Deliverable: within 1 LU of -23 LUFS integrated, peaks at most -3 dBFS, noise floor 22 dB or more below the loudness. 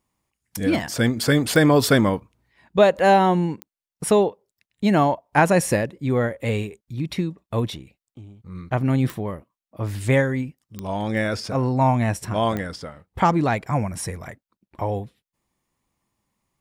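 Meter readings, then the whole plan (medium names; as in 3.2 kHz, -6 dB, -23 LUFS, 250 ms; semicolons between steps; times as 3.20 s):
clicks found 5; loudness -21.5 LUFS; peak level -3.5 dBFS; loudness target -23.0 LUFS
-> de-click; trim -1.5 dB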